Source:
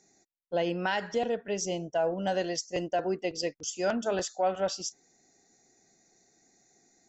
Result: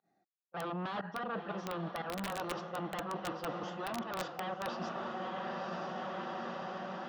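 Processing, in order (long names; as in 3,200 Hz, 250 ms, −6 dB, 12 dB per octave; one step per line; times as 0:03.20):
wave folding −30 dBFS
dynamic equaliser 2,100 Hz, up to −3 dB, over −47 dBFS, Q 1.1
fake sidechain pumping 119 BPM, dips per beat 1, −22 dB, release 99 ms
loudspeaker in its box 130–3,000 Hz, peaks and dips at 180 Hz +5 dB, 260 Hz −3 dB, 410 Hz −6 dB, 740 Hz +6 dB, 1,200 Hz +7 dB, 2,200 Hz −9 dB
on a send: feedback delay with all-pass diffusion 910 ms, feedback 52%, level −8 dB
on the sum: wrap-around overflow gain 26 dB
reversed playback
downward compressor 10 to 1, threshold −49 dBFS, peak gain reduction 18 dB
reversed playback
noise gate with hold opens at −50 dBFS
level +13 dB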